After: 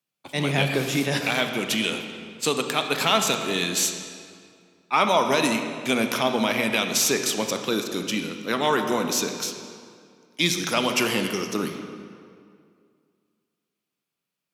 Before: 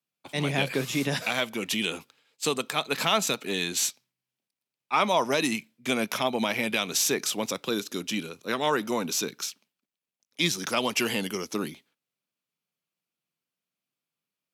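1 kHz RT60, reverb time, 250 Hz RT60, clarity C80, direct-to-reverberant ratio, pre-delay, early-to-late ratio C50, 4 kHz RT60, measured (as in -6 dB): 2.2 s, 2.2 s, 2.3 s, 7.0 dB, 5.5 dB, 28 ms, 6.5 dB, 1.6 s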